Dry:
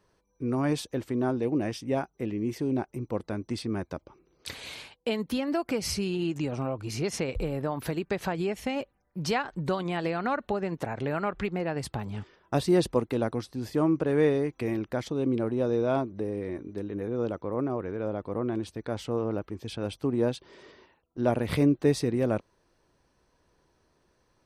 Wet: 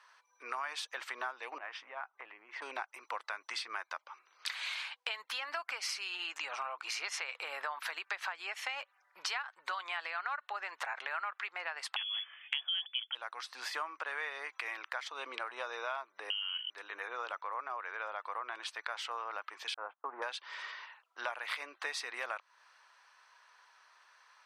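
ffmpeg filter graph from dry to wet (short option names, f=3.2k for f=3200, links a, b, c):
-filter_complex "[0:a]asettb=1/sr,asplit=3[a][b][c];[a]atrim=end=1.584[d];[b]atrim=start=1.58:end=2.62,asetpts=PTS-STARTPTS,afade=t=in:d=0.004:c=qsin,afade=t=out:st=1.036:d=0.004:c=qsin,lowpass=1.8k,acompressor=threshold=-36dB:ratio=16:attack=3.2:release=140:knee=1:detection=peak[e];[c]atrim=start=2.616[f];[d][e]acrossfade=d=0.004:c1=hsin:c2=qsin[g];[g][f]acrossfade=d=0.004:c1=qsin:c2=hsin,asettb=1/sr,asplit=3[h][i][j];[h]atrim=end=11.964[k];[i]atrim=start=11.96:end=13.15,asetpts=PTS-STARTPTS,afade=t=in:d=0.004:c=qsin,afade=t=out:st=1.186:d=0.004:c=qsin,lowpass=f=3k:t=q:w=0.5098,lowpass=f=3k:t=q:w=0.6013,lowpass=f=3k:t=q:w=0.9,lowpass=f=3k:t=q:w=2.563,afreqshift=-3500,equalizer=f=410:w=1.9:g=14,aeval=exprs='val(0)+0.00282*(sin(2*PI*60*n/s)+sin(2*PI*2*60*n/s)/2+sin(2*PI*3*60*n/s)/3+sin(2*PI*4*60*n/s)/4+sin(2*PI*5*60*n/s)/5)':c=same[l];[j]atrim=start=13.146[m];[k][l]acrossfade=d=0.004:c1=hsin:c2=qsin[n];[n][m]acrossfade=d=0.004:c1=qsin:c2=hsin,asettb=1/sr,asplit=3[o][p][q];[o]atrim=end=16.304[r];[p]atrim=start=16.3:end=16.7,asetpts=PTS-STARTPTS,afade=t=in:d=0.004:c=qsin,afade=t=out:st=0.396:d=0.004:c=qsin,bandreject=f=73.5:t=h:w=4,bandreject=f=147:t=h:w=4,bandreject=f=220.5:t=h:w=4,bandreject=f=294:t=h:w=4,bandreject=f=367.5:t=h:w=4,bandreject=f=441:t=h:w=4,bandreject=f=514.5:t=h:w=4,bandreject=f=588:t=h:w=4,bandreject=f=661.5:t=h:w=4,bandreject=f=735:t=h:w=4,bandreject=f=808.5:t=h:w=4,bandreject=f=882:t=h:w=4,bandreject=f=955.5:t=h:w=4,bandreject=f=1.029k:t=h:w=4,bandreject=f=1.1025k:t=h:w=4,bandreject=f=1.176k:t=h:w=4,bandreject=f=1.2495k:t=h:w=4,bandreject=f=1.323k:t=h:w=4,bandreject=f=1.3965k:t=h:w=4,bandreject=f=1.47k:t=h:w=4,bandreject=f=1.5435k:t=h:w=4,bandreject=f=1.617k:t=h:w=4,bandreject=f=1.6905k:t=h:w=4,bandreject=f=1.764k:t=h:w=4,bandreject=f=1.8375k:t=h:w=4,lowpass=f=2.8k:t=q:w=0.5098,lowpass=f=2.8k:t=q:w=0.6013,lowpass=f=2.8k:t=q:w=0.9,lowpass=f=2.8k:t=q:w=2.563,afreqshift=-3300[s];[q]atrim=start=16.696[t];[r][s]acrossfade=d=0.004:c1=hsin:c2=qsin[u];[u][t]acrossfade=d=0.004:c1=qsin:c2=hsin,asettb=1/sr,asplit=3[v][w][x];[v]atrim=end=19.744[y];[w]atrim=start=19.74:end=20.22,asetpts=PTS-STARTPTS,afade=t=in:d=0.004:c=qsin,afade=t=out:st=0.476:d=0.004:c=qsin,aeval=exprs='val(0)+0.5*0.0075*sgn(val(0))':c=same,agate=range=-39dB:threshold=-35dB:ratio=16:release=100:detection=peak,lowpass=f=1.2k:w=0.5412,lowpass=f=1.2k:w=1.3066[z];[x]atrim=start=20.216[aa];[y][z]acrossfade=d=0.004:c1=hsin:c2=qsin[ab];[ab][aa]acrossfade=d=0.004:c1=qsin:c2=hsin,highpass=f=1.1k:w=0.5412,highpass=f=1.1k:w=1.3066,aemphasis=mode=reproduction:type=75fm,acompressor=threshold=-51dB:ratio=6,volume=15dB"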